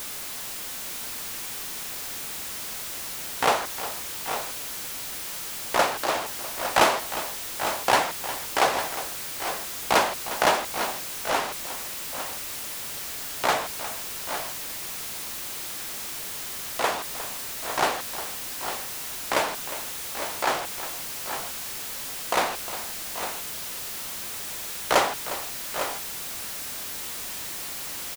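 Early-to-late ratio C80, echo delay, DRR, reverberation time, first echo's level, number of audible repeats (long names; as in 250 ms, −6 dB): no reverb audible, 357 ms, no reverb audible, no reverb audible, −13.5 dB, 2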